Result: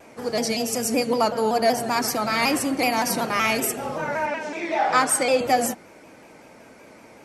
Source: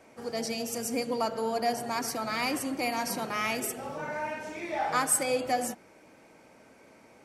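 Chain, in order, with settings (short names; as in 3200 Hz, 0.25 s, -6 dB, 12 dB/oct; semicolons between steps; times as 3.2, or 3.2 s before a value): 4.26–5.41 three-band isolator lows -17 dB, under 160 Hz, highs -14 dB, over 8000 Hz; shaped vibrato saw down 5.3 Hz, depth 100 cents; gain +8.5 dB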